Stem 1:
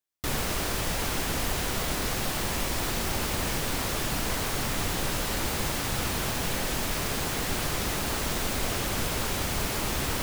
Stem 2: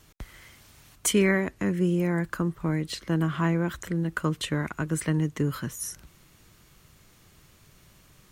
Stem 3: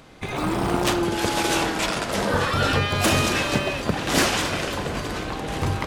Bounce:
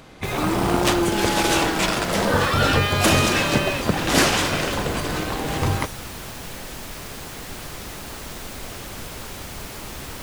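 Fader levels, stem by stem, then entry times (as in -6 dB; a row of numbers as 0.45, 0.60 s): -5.5, -9.0, +2.5 dB; 0.00, 0.00, 0.00 s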